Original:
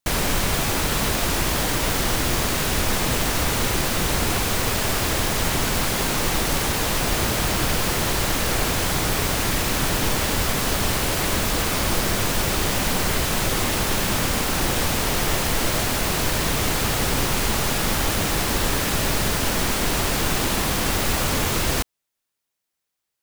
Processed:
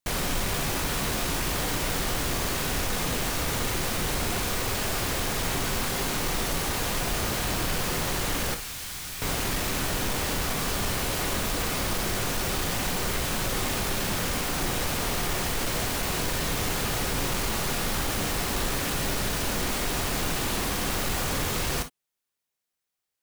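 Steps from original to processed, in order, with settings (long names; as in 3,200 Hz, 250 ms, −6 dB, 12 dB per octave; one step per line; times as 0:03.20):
0:08.54–0:09.22: guitar amp tone stack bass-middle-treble 5-5-5
soft clipping −17 dBFS, distortion −16 dB
convolution reverb, pre-delay 3 ms, DRR 7 dB
level −4.5 dB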